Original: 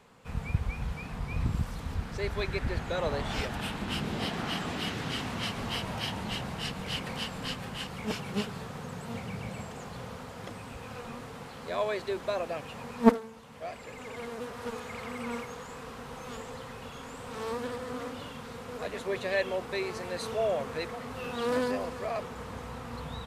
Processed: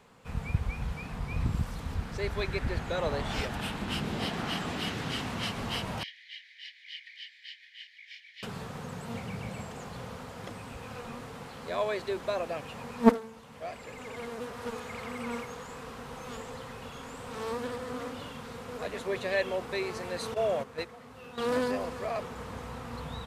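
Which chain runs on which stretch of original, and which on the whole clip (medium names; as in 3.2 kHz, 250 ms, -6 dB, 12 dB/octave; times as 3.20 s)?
6.03–8.43 s: steep high-pass 1.8 kHz 96 dB/octave + distance through air 280 m + band-stop 2.7 kHz, Q 6.6
20.34–21.38 s: gate -34 dBFS, range -10 dB + high-pass 51 Hz
whole clip: none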